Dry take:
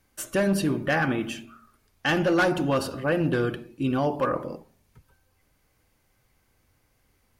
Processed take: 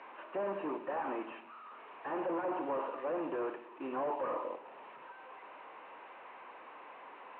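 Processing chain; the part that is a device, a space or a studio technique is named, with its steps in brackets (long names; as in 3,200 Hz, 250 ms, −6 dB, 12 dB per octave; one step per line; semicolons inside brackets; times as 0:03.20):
digital answering machine (band-pass filter 320–3,300 Hz; linear delta modulator 16 kbit/s, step −42.5 dBFS; loudspeaker in its box 450–4,200 Hz, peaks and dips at 980 Hz +9 dB, 1,500 Hz −4 dB, 2,100 Hz −6 dB, 3,300 Hz −10 dB)
level −2 dB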